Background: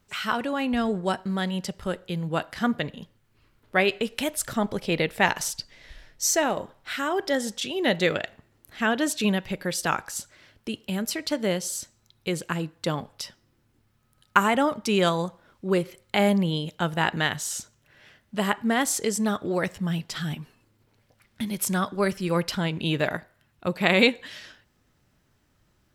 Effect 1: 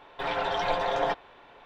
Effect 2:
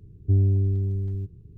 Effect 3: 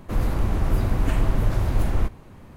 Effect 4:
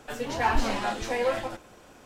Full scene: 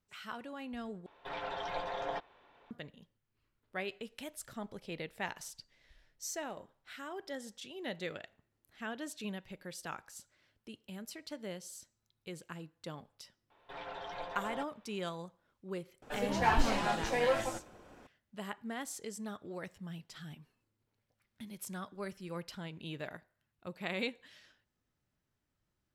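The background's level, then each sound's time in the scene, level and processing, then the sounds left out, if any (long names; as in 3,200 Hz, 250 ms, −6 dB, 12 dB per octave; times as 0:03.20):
background −17.5 dB
0:01.06: overwrite with 1 −11 dB
0:13.50: mix in 1 −15.5 dB
0:16.02: mix in 4 −3.5 dB + one half of a high-frequency compander decoder only
not used: 2, 3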